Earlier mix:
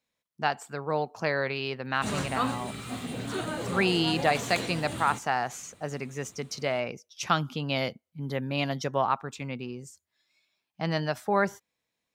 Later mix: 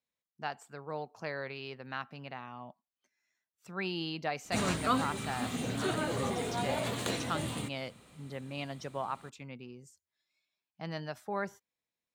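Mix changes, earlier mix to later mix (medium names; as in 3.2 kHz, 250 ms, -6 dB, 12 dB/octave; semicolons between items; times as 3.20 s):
speech -10.5 dB; background: entry +2.50 s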